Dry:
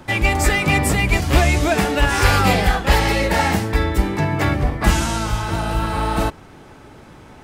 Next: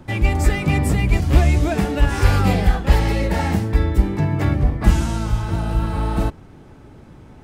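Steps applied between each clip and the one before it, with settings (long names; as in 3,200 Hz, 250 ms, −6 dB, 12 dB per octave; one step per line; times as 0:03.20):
low-shelf EQ 410 Hz +11.5 dB
level −8.5 dB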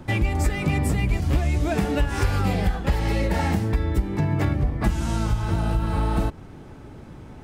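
downward compressor 5 to 1, threshold −20 dBFS, peak gain reduction 12.5 dB
level +1.5 dB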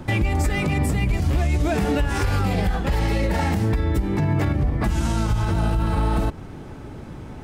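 brickwall limiter −18 dBFS, peak gain reduction 8.5 dB
level +5 dB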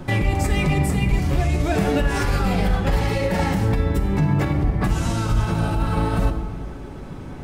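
convolution reverb RT60 1.4 s, pre-delay 5 ms, DRR 3 dB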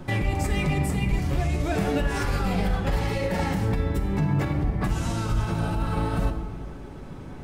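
flanger 1.9 Hz, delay 4.4 ms, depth 4.5 ms, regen +89%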